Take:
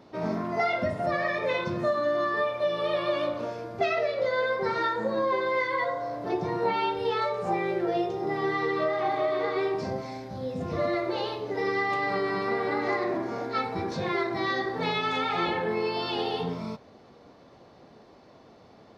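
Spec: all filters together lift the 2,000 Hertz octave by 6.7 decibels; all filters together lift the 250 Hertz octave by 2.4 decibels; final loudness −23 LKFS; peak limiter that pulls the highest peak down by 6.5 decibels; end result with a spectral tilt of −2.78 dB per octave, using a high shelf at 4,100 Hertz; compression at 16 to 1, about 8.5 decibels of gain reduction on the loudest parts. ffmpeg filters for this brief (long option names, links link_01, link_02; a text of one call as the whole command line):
ffmpeg -i in.wav -af "equalizer=frequency=250:width_type=o:gain=3.5,equalizer=frequency=2000:width_type=o:gain=5.5,highshelf=frequency=4100:gain=9,acompressor=threshold=-28dB:ratio=16,volume=10.5dB,alimiter=limit=-14.5dB:level=0:latency=1" out.wav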